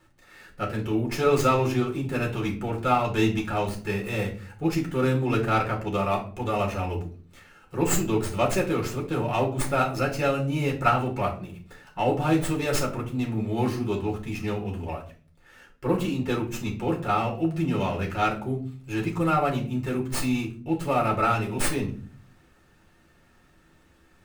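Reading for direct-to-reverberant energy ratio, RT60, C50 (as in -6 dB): -2.0 dB, 0.40 s, 10.5 dB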